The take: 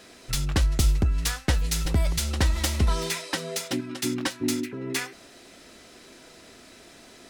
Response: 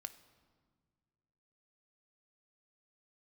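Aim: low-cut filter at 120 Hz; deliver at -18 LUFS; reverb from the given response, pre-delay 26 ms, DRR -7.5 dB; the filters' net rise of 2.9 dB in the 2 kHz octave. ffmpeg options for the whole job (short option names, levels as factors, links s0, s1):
-filter_complex "[0:a]highpass=120,equalizer=f=2000:t=o:g=3.5,asplit=2[s0][s1];[1:a]atrim=start_sample=2205,adelay=26[s2];[s1][s2]afir=irnorm=-1:irlink=0,volume=3.98[s3];[s0][s3]amix=inputs=2:normalize=0,volume=1.41"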